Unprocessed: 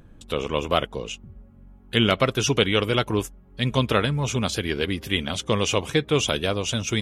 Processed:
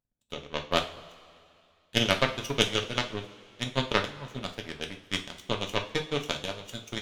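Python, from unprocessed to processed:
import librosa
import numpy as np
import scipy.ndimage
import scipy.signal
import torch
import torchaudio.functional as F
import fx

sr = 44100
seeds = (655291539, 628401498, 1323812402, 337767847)

y = fx.power_curve(x, sr, exponent=2.0)
y = fx.transient(y, sr, attack_db=3, sustain_db=-8)
y = fx.rev_double_slope(y, sr, seeds[0], early_s=0.36, late_s=2.5, knee_db=-18, drr_db=3.0)
y = y * 10.0 ** (-1.5 / 20.0)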